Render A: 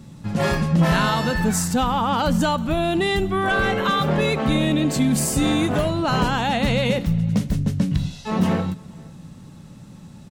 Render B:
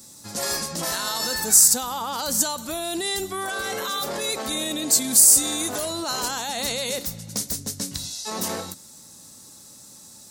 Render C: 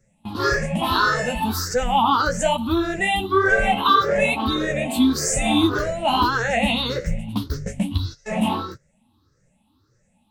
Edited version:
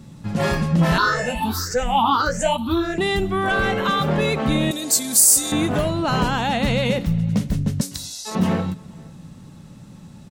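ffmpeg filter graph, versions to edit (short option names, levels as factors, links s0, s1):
-filter_complex "[1:a]asplit=2[s0][s1];[0:a]asplit=4[s2][s3][s4][s5];[s2]atrim=end=0.982[s6];[2:a]atrim=start=0.978:end=2.982[s7];[s3]atrim=start=2.978:end=4.712[s8];[s0]atrim=start=4.708:end=5.522[s9];[s4]atrim=start=5.518:end=7.812[s10];[s1]atrim=start=7.808:end=8.352[s11];[s5]atrim=start=8.348[s12];[s6][s7]acrossfade=d=0.004:c1=hsin:c2=hsin[s13];[s13][s8]acrossfade=d=0.004:c1=hsin:c2=hsin[s14];[s14][s9]acrossfade=d=0.004:c1=hsin:c2=hsin[s15];[s15][s10]acrossfade=d=0.004:c1=hsin:c2=hsin[s16];[s16][s11]acrossfade=d=0.004:c1=hsin:c2=hsin[s17];[s17][s12]acrossfade=d=0.004:c1=hsin:c2=hsin"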